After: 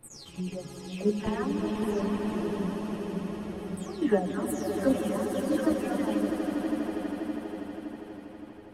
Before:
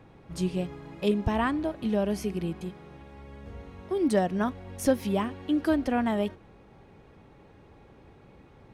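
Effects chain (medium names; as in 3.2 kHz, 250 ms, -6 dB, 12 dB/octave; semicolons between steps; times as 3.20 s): delay that grows with frequency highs early, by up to 328 ms; level held to a coarse grid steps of 12 dB; echo with a slow build-up 81 ms, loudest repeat 8, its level -10.5 dB; three-phase chorus; trim +5 dB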